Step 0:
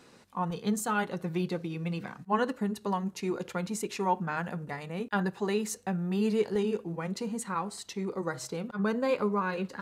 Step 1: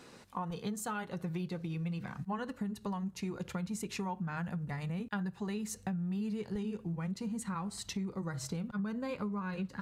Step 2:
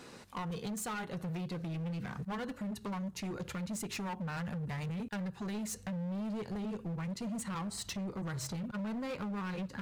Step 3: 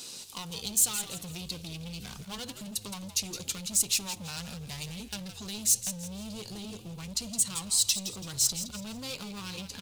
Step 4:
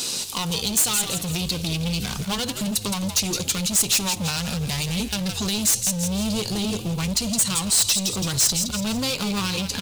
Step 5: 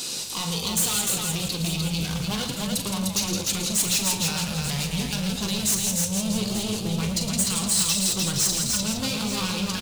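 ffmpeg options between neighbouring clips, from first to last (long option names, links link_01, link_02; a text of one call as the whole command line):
ffmpeg -i in.wav -af "asubboost=boost=7:cutoff=150,acompressor=threshold=-37dB:ratio=6,volume=2dB" out.wav
ffmpeg -i in.wav -af "asoftclip=type=hard:threshold=-38.5dB,volume=3dB" out.wav
ffmpeg -i in.wav -filter_complex "[0:a]aexciter=amount=9:drive=5.5:freq=2800,asplit=5[link_01][link_02][link_03][link_04][link_05];[link_02]adelay=166,afreqshift=-98,volume=-11dB[link_06];[link_03]adelay=332,afreqshift=-196,volume=-20.4dB[link_07];[link_04]adelay=498,afreqshift=-294,volume=-29.7dB[link_08];[link_05]adelay=664,afreqshift=-392,volume=-39.1dB[link_09];[link_01][link_06][link_07][link_08][link_09]amix=inputs=5:normalize=0,volume=-4dB" out.wav
ffmpeg -i in.wav -filter_complex "[0:a]asplit=2[link_01][link_02];[link_02]aeval=exprs='0.237*sin(PI/2*3.98*val(0)/0.237)':channel_layout=same,volume=-10dB[link_03];[link_01][link_03]amix=inputs=2:normalize=0,alimiter=limit=-21dB:level=0:latency=1:release=137,volume=6.5dB" out.wav
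ffmpeg -i in.wav -filter_complex "[0:a]flanger=delay=5.1:depth=1.7:regen=-67:speed=1.7:shape=triangular,asplit=2[link_01][link_02];[link_02]aecho=0:1:42|112|301|885:0.398|0.355|0.708|0.251[link_03];[link_01][link_03]amix=inputs=2:normalize=0" out.wav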